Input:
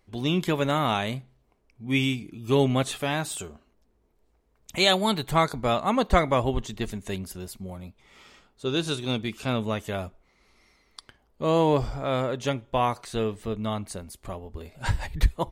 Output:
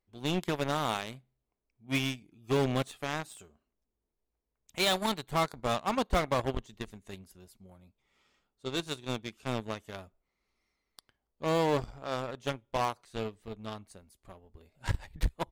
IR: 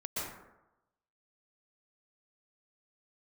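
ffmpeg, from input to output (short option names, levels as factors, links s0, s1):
-af "aeval=exprs='0.447*(cos(1*acos(clip(val(0)/0.447,-1,1)))-cos(1*PI/2))+0.0562*(cos(7*acos(clip(val(0)/0.447,-1,1)))-cos(7*PI/2))':c=same,asoftclip=type=hard:threshold=0.0944"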